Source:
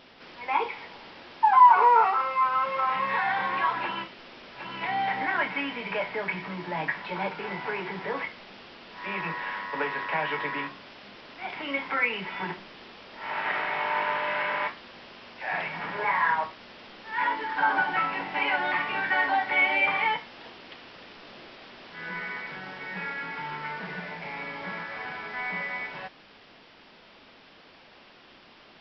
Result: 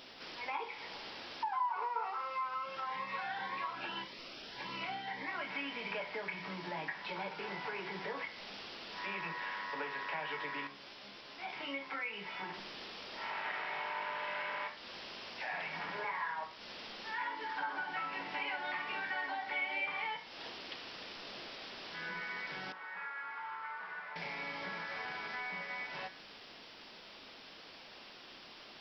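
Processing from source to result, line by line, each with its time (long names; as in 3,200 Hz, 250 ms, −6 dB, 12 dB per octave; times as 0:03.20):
0:02.54–0:05.48: phaser whose notches keep moving one way rising 1.8 Hz
0:10.67–0:12.54: tuned comb filter 69 Hz, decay 0.18 s, mix 80%
0:22.72–0:24.16: resonant band-pass 1,200 Hz, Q 2.3
whole clip: downward compressor 3 to 1, threshold −38 dBFS; bass and treble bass −3 dB, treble +10 dB; hum removal 60.33 Hz, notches 38; level −1.5 dB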